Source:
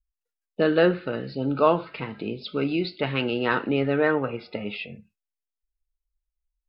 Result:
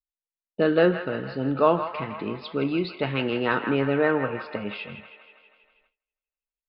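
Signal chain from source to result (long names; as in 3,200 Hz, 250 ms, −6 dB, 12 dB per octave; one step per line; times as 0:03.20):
on a send: delay with a band-pass on its return 161 ms, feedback 62%, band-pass 1,500 Hz, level −7.5 dB
on the sum: noise gate with hold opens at −55 dBFS
high-shelf EQ 4,600 Hz −8 dB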